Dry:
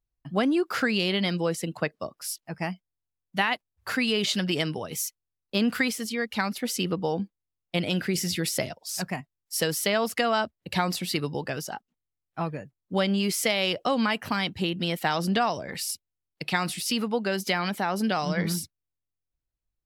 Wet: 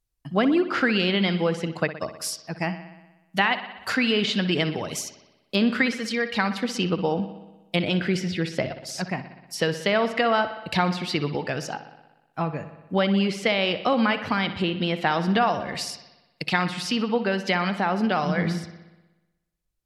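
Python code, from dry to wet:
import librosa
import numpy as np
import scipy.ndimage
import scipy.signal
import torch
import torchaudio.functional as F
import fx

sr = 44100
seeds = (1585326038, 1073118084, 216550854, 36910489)

y = fx.env_lowpass_down(x, sr, base_hz=2900.0, full_db=-25.0)
y = fx.high_shelf(y, sr, hz=4300.0, db=fx.steps((0.0, 7.5), (8.2, -2.5), (9.56, 3.5)))
y = fx.echo_bbd(y, sr, ms=61, stages=2048, feedback_pct=68, wet_db=-13.0)
y = F.gain(torch.from_numpy(y), 3.0).numpy()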